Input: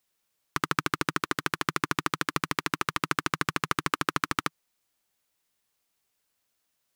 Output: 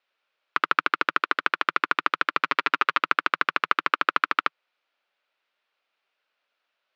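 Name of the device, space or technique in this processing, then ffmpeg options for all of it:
phone earpiece: -filter_complex "[0:a]asettb=1/sr,asplit=3[a][b][c];[a]atrim=end=2.434[d];[b]atrim=start=2.43:end=3.03,asetpts=PTS-STARTPTS,afade=t=in:d=0.004:c=qsin,afade=t=out:st=0.596:d=0.004:c=qsin,aecho=1:1:7.3:0.59,atrim=end_sample=26460[e];[c]atrim=start=3.026[f];[d][e]acrossfade=d=0.004:c1=hsin:c2=qsin[g];[g][f]acrossfade=d=0.004:c1=qsin:c2=hsin,highpass=470,equalizer=f=580:t=q:w=4:g=5,equalizer=f=1.4k:t=q:w=4:g=6,equalizer=f=2.5k:t=q:w=4:g=4,lowpass=f=3.9k:w=0.5412,lowpass=f=3.9k:w=1.3066,volume=3.5dB"

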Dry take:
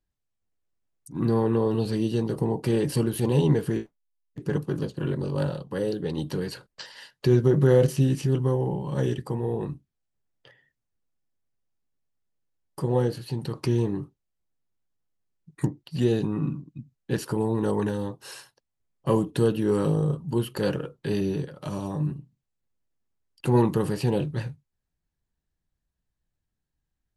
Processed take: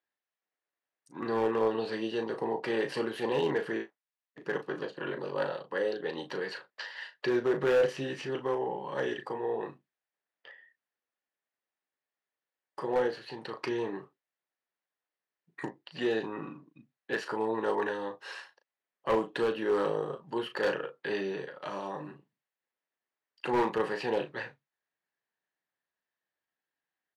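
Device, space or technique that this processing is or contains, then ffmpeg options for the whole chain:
megaphone: -filter_complex "[0:a]highpass=540,lowpass=3.3k,equalizer=f=1.8k:t=o:w=0.35:g=6,asoftclip=type=hard:threshold=-23.5dB,asplit=2[a][b];[b]adelay=36,volume=-9dB[c];[a][c]amix=inputs=2:normalize=0,volume=1.5dB"

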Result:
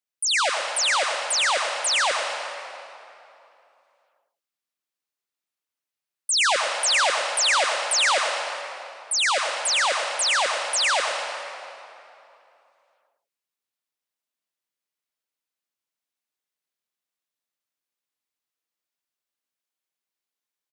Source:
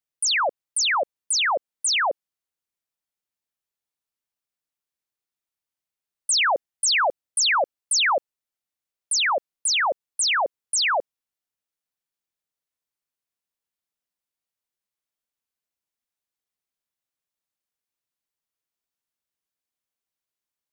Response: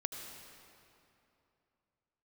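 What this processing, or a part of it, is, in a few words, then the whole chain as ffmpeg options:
PA in a hall: -filter_complex "[0:a]highpass=180,equalizer=f=2.7k:t=o:w=2.9:g=3,aecho=1:1:112:0.355[a];[1:a]atrim=start_sample=2205[b];[a][b]afir=irnorm=-1:irlink=0,volume=-2dB"

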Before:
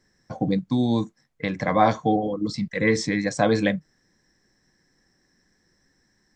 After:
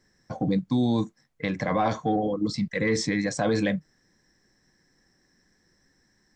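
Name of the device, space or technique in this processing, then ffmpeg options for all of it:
soft clipper into limiter: -af "asoftclip=type=tanh:threshold=-6.5dB,alimiter=limit=-15.5dB:level=0:latency=1:release=19"

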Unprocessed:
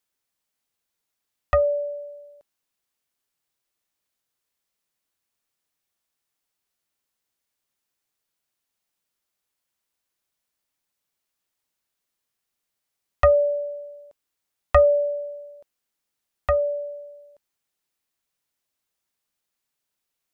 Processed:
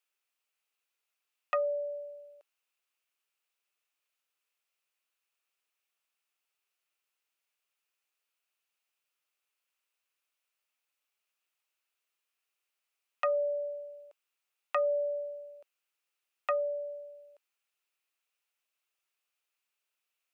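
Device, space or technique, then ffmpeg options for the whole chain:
laptop speaker: -af "highpass=f=370:w=0.5412,highpass=f=370:w=1.3066,equalizer=f=1.3k:t=o:w=0.38:g=5.5,equalizer=f=2.6k:t=o:w=0.5:g=10.5,alimiter=limit=-11.5dB:level=0:latency=1:release=428,volume=-6dB"

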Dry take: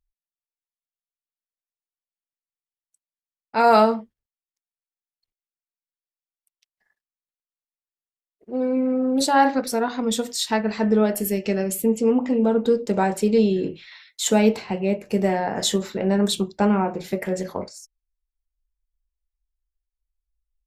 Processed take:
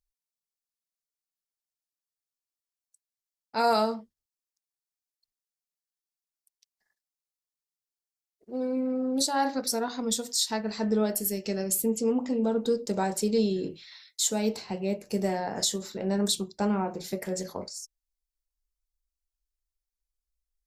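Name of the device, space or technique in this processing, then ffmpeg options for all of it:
over-bright horn tweeter: -af "highshelf=f=3.6k:t=q:w=1.5:g=8,alimiter=limit=-7.5dB:level=0:latency=1:release=477,volume=-7dB"

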